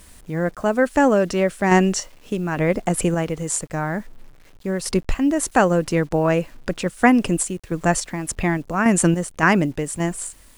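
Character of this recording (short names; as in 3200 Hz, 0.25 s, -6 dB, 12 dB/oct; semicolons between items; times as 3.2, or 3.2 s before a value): random-step tremolo, depth 65%; a quantiser's noise floor 10-bit, dither none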